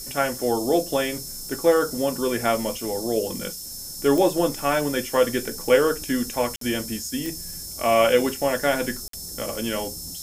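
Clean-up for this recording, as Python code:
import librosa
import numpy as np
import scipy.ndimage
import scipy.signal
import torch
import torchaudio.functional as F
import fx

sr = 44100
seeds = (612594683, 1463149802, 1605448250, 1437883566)

y = fx.fix_declick_ar(x, sr, threshold=10.0)
y = fx.notch(y, sr, hz=5300.0, q=30.0)
y = fx.fix_interpolate(y, sr, at_s=(6.56, 9.08), length_ms=53.0)
y = fx.noise_reduce(y, sr, print_start_s=3.52, print_end_s=4.02, reduce_db=30.0)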